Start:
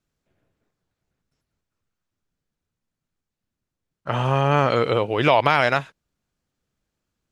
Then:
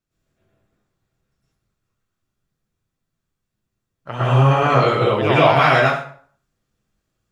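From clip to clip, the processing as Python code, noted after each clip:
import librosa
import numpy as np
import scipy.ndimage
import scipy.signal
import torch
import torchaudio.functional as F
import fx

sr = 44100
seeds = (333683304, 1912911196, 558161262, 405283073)

y = fx.rev_plate(x, sr, seeds[0], rt60_s=0.51, hf_ratio=0.75, predelay_ms=95, drr_db=-9.5)
y = F.gain(torch.from_numpy(y), -5.5).numpy()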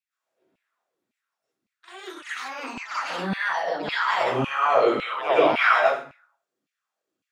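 y = fx.echo_pitch(x, sr, ms=131, semitones=6, count=3, db_per_echo=-6.0)
y = fx.filter_lfo_highpass(y, sr, shape='saw_down', hz=1.8, low_hz=220.0, high_hz=2600.0, q=3.5)
y = F.gain(torch.from_numpy(y), -8.5).numpy()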